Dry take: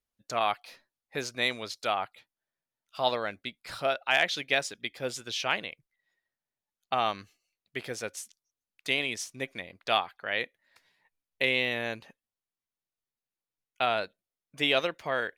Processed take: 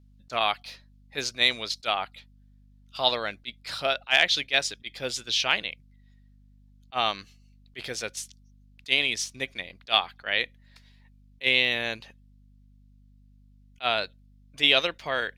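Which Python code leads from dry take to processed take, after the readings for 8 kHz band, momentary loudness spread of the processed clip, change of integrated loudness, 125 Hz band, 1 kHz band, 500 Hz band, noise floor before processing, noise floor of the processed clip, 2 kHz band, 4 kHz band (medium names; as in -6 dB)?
+5.0 dB, 17 LU, +4.5 dB, 0.0 dB, +0.5 dB, 0.0 dB, under -85 dBFS, -56 dBFS, +4.0 dB, +8.0 dB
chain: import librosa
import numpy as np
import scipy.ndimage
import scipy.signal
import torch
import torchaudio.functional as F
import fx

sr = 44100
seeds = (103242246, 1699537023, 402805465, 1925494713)

y = fx.peak_eq(x, sr, hz=4000.0, db=9.5, octaves=1.7)
y = fx.add_hum(y, sr, base_hz=50, snr_db=27)
y = fx.attack_slew(y, sr, db_per_s=440.0)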